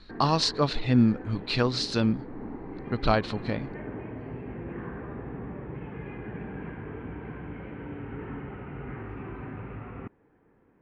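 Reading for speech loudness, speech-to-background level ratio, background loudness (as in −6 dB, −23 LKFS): −26.5 LKFS, 13.0 dB, −39.5 LKFS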